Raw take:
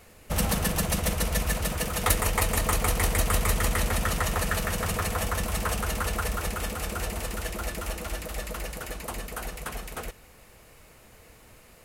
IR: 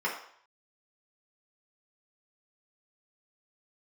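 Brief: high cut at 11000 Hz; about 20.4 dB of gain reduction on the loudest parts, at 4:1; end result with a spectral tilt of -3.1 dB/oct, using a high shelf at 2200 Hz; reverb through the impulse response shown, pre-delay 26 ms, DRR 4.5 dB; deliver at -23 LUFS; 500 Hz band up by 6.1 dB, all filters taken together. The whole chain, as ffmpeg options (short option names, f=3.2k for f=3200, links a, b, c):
-filter_complex "[0:a]lowpass=11k,equalizer=f=500:t=o:g=6.5,highshelf=f=2.2k:g=8.5,acompressor=threshold=-39dB:ratio=4,asplit=2[a][b];[1:a]atrim=start_sample=2205,adelay=26[c];[b][c]afir=irnorm=-1:irlink=0,volume=-13.5dB[d];[a][d]amix=inputs=2:normalize=0,volume=15.5dB"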